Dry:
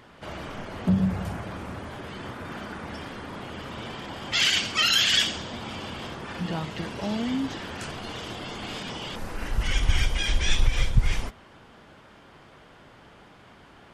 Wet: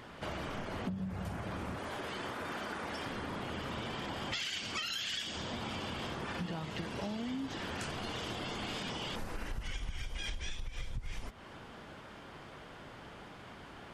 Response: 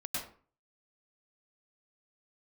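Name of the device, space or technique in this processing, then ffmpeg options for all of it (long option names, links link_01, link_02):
serial compression, leveller first: -filter_complex "[0:a]asettb=1/sr,asplit=3[link_01][link_02][link_03];[link_01]atrim=end=1.774[link_04];[link_02]atrim=start=1.77:end=3.06,asetpts=PTS-STARTPTS,afade=type=in:duration=0.004:curve=qsin,afade=type=out:start_time=1.286:duration=0.004:curve=qsin,bass=frequency=250:gain=-9,treble=frequency=4000:gain=2[link_05];[link_03]atrim=start=3.056[link_06];[link_04][link_05]acrossfade=duration=0.004:curve1=hsin:curve2=qsin[link_07];[link_07][link_06]acrossfade=duration=0.004:curve1=qsin:curve2=hsin,acompressor=threshold=-24dB:ratio=3,acompressor=threshold=-37dB:ratio=6,volume=1dB"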